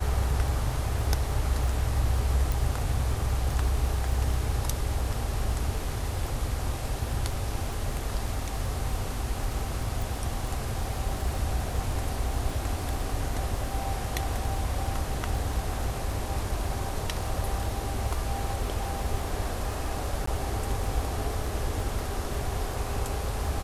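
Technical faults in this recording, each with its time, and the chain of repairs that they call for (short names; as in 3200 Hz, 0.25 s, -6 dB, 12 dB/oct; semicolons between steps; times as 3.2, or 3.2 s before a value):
crackle 22/s -33 dBFS
2.52 pop
10.02 pop
20.26–20.27 gap 14 ms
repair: de-click; interpolate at 20.26, 14 ms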